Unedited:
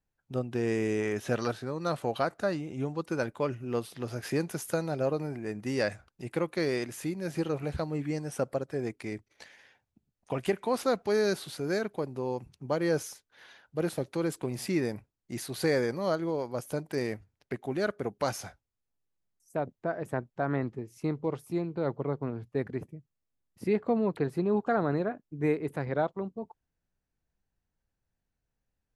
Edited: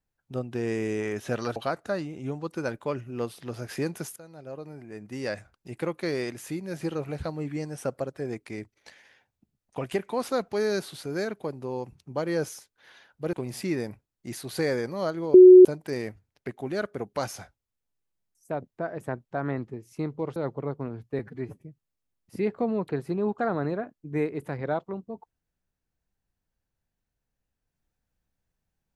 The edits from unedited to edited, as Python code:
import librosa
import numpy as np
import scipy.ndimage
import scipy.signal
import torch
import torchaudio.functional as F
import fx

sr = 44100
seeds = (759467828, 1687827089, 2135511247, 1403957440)

y = fx.edit(x, sr, fx.cut(start_s=1.56, length_s=0.54),
    fx.fade_in_from(start_s=4.7, length_s=1.62, floor_db=-21.0),
    fx.cut(start_s=13.87, length_s=0.51),
    fx.bleep(start_s=16.39, length_s=0.31, hz=367.0, db=-6.5),
    fx.cut(start_s=21.41, length_s=0.37),
    fx.stretch_span(start_s=22.61, length_s=0.28, factor=1.5), tone=tone)